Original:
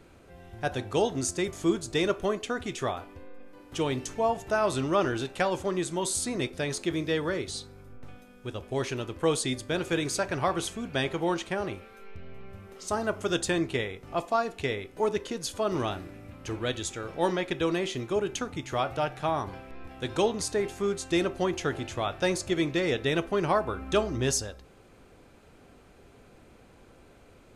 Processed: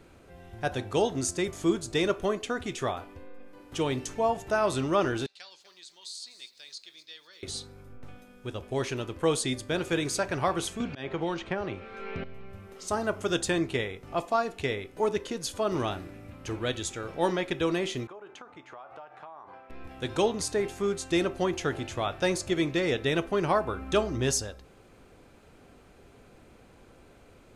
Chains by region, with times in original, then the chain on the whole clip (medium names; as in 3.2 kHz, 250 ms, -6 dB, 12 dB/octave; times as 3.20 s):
5.26–7.43 s: band-pass filter 4.4 kHz, Q 4.5 + bit-crushed delay 247 ms, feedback 35%, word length 10-bit, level -13.5 dB
10.80–12.24 s: low-pass 4.3 kHz + slow attack 530 ms + three bands compressed up and down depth 100%
18.07–19.70 s: band-pass filter 980 Hz, Q 1.4 + compression 12:1, threshold -41 dBFS
whole clip: none